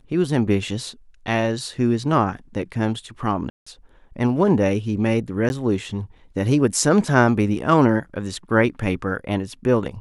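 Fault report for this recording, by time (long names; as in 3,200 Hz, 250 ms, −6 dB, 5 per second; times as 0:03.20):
0:03.50–0:03.67: drop-out 165 ms
0:05.49–0:05.50: drop-out 11 ms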